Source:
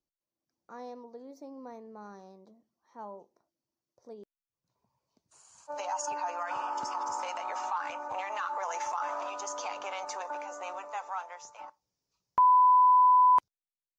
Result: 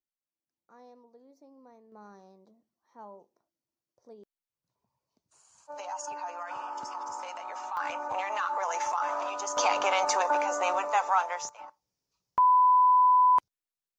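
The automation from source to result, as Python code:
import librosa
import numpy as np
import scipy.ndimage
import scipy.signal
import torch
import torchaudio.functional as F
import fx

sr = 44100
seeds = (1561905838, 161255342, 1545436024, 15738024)

y = fx.gain(x, sr, db=fx.steps((0.0, -10.0), (1.92, -3.5), (7.77, 3.5), (9.57, 11.5), (11.49, 0.0)))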